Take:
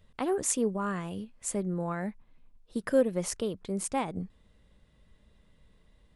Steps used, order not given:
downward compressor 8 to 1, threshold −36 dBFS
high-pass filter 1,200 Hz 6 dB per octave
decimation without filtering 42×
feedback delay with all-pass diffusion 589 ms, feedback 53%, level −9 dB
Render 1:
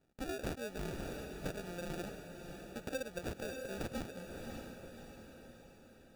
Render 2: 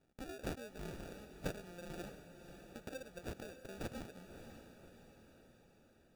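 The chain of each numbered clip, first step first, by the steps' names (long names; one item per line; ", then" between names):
high-pass filter, then decimation without filtering, then feedback delay with all-pass diffusion, then downward compressor
downward compressor, then high-pass filter, then decimation without filtering, then feedback delay with all-pass diffusion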